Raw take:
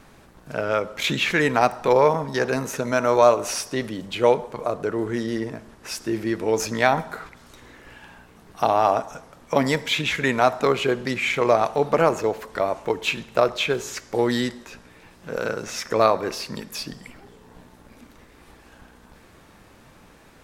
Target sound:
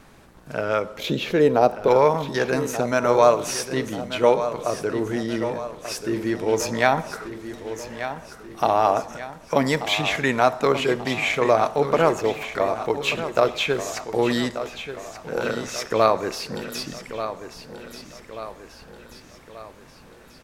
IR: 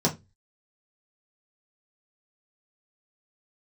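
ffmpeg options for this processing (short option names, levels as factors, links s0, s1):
-filter_complex "[0:a]asettb=1/sr,asplit=3[s0][s1][s2];[s0]atrim=end=0.984[s3];[s1]atrim=start=0.98:end=1.88,asetpts=PTS-STARTPTS,afade=t=in:d=0.004:c=qsin,afade=t=out:st=0.896:d=0.004:c=qsin,equalizer=f=500:t=o:w=1:g=9,equalizer=f=1000:t=o:w=1:g=-4,equalizer=f=2000:t=o:w=1:g=-11,equalizer=f=8000:t=o:w=1:g=-10[s4];[s2]atrim=start=1.876[s5];[s3][s4]acrossfade=d=0.004:c1=hsin:c2=qsin[s6];[s6][s5]acrossfade=d=0.004:c1=qsin:c2=hsin,aecho=1:1:1185|2370|3555|4740|5925:0.282|0.141|0.0705|0.0352|0.0176"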